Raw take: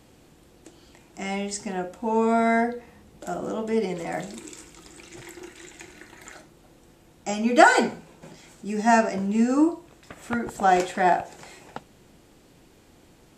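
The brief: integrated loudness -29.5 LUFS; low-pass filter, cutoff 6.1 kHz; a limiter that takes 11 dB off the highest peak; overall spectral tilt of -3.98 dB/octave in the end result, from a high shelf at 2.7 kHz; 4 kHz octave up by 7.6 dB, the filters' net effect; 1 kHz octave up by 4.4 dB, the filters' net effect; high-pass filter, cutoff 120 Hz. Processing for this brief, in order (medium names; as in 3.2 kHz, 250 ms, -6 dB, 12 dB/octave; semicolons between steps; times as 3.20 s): high-pass 120 Hz; low-pass 6.1 kHz; peaking EQ 1 kHz +5.5 dB; treble shelf 2.7 kHz +5.5 dB; peaking EQ 4 kHz +6 dB; trim -6.5 dB; peak limiter -15 dBFS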